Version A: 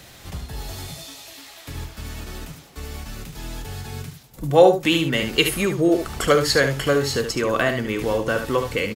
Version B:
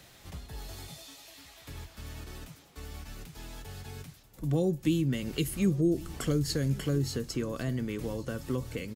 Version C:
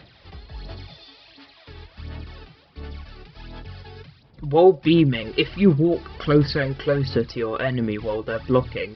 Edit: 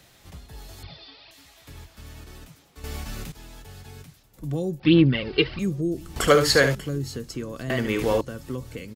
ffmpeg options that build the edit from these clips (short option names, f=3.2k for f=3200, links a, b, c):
-filter_complex "[2:a]asplit=2[a][b];[0:a]asplit=3[c][d][e];[1:a]asplit=6[f][g][h][i][j][k];[f]atrim=end=0.832[l];[a]atrim=start=0.828:end=1.312[m];[g]atrim=start=1.308:end=2.842[n];[c]atrim=start=2.838:end=3.322[o];[h]atrim=start=3.318:end=4.802[p];[b]atrim=start=4.798:end=5.592[q];[i]atrim=start=5.588:end=6.162[r];[d]atrim=start=6.158:end=6.752[s];[j]atrim=start=6.748:end=7.702[t];[e]atrim=start=7.698:end=8.212[u];[k]atrim=start=8.208[v];[l][m]acrossfade=d=0.004:c1=hsin:c2=hsin[w];[w][n]acrossfade=d=0.004:c1=hsin:c2=hsin[x];[x][o]acrossfade=d=0.004:c1=hsin:c2=hsin[y];[y][p]acrossfade=d=0.004:c1=hsin:c2=hsin[z];[z][q]acrossfade=d=0.004:c1=hsin:c2=hsin[aa];[aa][r]acrossfade=d=0.004:c1=hsin:c2=hsin[ab];[ab][s]acrossfade=d=0.004:c1=hsin:c2=hsin[ac];[ac][t]acrossfade=d=0.004:c1=hsin:c2=hsin[ad];[ad][u]acrossfade=d=0.004:c1=hsin:c2=hsin[ae];[ae][v]acrossfade=d=0.004:c1=hsin:c2=hsin"